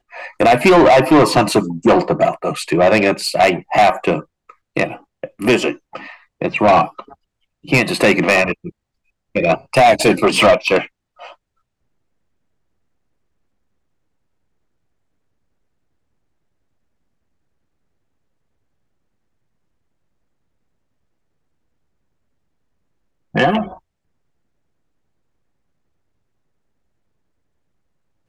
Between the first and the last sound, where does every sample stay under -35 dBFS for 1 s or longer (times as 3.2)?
11.33–23.34